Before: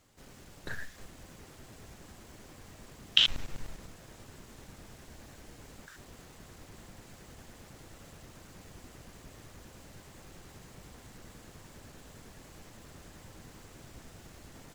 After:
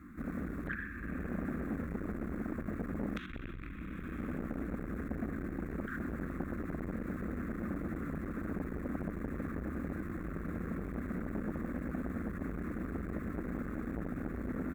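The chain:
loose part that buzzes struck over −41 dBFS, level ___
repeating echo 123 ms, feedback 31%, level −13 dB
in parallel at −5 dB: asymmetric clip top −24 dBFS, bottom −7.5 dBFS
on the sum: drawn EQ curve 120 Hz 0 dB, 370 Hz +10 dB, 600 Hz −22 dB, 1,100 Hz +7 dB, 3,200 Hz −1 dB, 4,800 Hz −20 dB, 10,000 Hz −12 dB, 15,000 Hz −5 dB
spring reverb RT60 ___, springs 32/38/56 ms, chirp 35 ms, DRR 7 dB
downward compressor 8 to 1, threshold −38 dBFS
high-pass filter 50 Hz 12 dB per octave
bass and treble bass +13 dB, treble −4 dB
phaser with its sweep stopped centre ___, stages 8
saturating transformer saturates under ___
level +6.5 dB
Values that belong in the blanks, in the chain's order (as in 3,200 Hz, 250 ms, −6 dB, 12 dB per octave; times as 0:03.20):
−22 dBFS, 2.3 s, 610 Hz, 490 Hz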